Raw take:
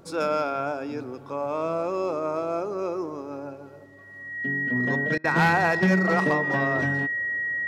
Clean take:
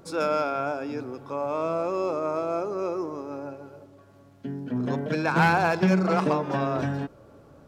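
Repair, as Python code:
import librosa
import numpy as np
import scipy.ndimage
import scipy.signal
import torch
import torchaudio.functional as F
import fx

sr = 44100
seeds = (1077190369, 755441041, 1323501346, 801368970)

y = fx.fix_declip(x, sr, threshold_db=-13.5)
y = fx.notch(y, sr, hz=1900.0, q=30.0)
y = fx.fix_interpolate(y, sr, at_s=(5.18,), length_ms=60.0)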